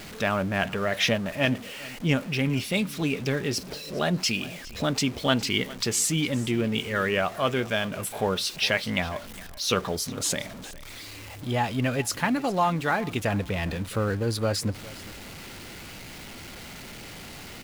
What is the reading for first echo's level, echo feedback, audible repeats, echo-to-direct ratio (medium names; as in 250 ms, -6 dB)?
-19.5 dB, 22%, 2, -19.5 dB